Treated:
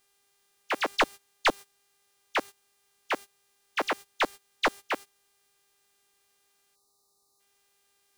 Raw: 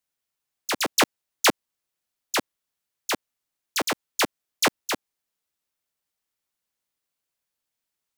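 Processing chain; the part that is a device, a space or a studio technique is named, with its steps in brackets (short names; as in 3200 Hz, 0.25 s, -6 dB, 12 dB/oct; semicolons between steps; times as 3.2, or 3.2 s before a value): aircraft radio (BPF 370–2600 Hz; hard clip -16.5 dBFS, distortion -12 dB; buzz 400 Hz, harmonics 29, -53 dBFS -1 dB/oct; white noise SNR 19 dB; gate -37 dBFS, range -20 dB); spectral gain 6.75–7.4, 1300–3600 Hz -27 dB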